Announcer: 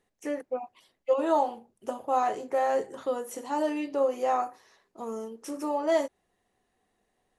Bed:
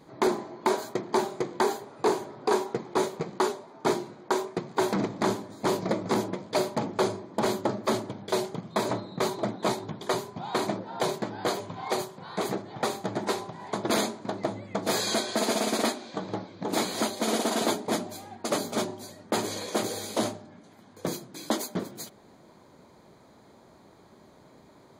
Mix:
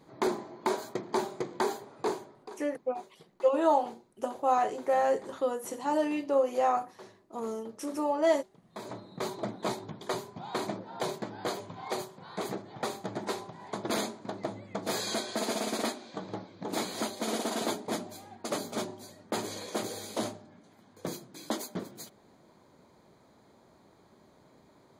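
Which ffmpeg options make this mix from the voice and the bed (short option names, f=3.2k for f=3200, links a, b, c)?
-filter_complex "[0:a]adelay=2350,volume=0dB[a];[1:a]volume=15dB,afade=t=out:st=1.92:d=0.63:silence=0.0944061,afade=t=in:st=8.59:d=0.81:silence=0.105925[b];[a][b]amix=inputs=2:normalize=0"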